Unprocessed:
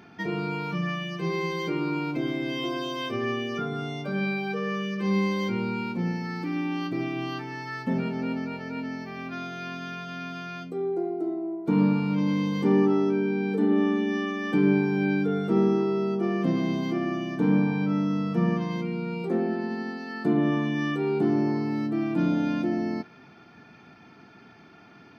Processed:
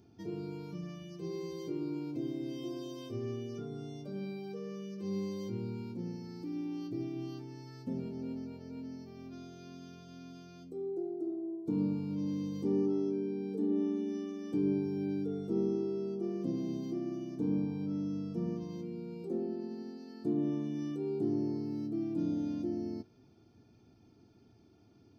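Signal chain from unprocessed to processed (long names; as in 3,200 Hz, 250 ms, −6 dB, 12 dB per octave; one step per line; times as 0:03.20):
drawn EQ curve 110 Hz 0 dB, 160 Hz −14 dB, 330 Hz −7 dB, 1,800 Hz −29 dB, 5,600 Hz −8 dB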